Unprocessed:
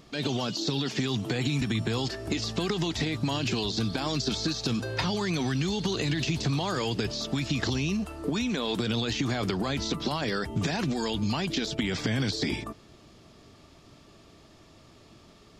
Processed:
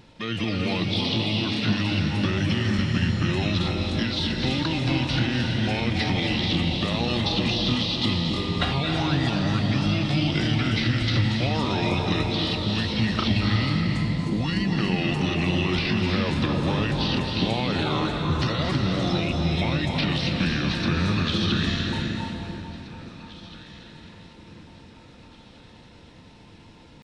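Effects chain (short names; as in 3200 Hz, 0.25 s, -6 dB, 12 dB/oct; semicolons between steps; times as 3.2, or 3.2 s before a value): dynamic EQ 5200 Hz, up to +5 dB, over -50 dBFS, Q 3.3; pitch shift +5 st; echo with dull and thin repeats by turns 0.584 s, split 1700 Hz, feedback 54%, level -13.5 dB; plate-style reverb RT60 1.9 s, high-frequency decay 0.65×, pre-delay 0.12 s, DRR 0 dB; speed mistake 78 rpm record played at 45 rpm; gain +2 dB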